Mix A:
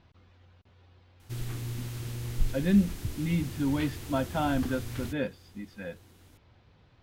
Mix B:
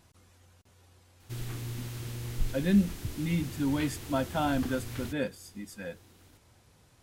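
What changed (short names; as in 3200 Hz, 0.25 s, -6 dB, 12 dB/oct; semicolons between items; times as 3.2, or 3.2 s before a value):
speech: remove LPF 4100 Hz 24 dB/oct; master: add low shelf 140 Hz -3.5 dB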